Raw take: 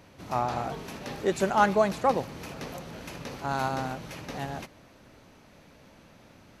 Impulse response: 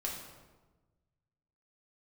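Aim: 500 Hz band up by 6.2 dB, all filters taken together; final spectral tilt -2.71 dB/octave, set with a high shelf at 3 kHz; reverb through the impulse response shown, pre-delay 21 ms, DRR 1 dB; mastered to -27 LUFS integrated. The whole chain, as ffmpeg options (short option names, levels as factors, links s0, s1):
-filter_complex "[0:a]equalizer=f=500:t=o:g=8.5,highshelf=f=3000:g=-6.5,asplit=2[s0][s1];[1:a]atrim=start_sample=2205,adelay=21[s2];[s1][s2]afir=irnorm=-1:irlink=0,volume=0.708[s3];[s0][s3]amix=inputs=2:normalize=0,volume=0.631"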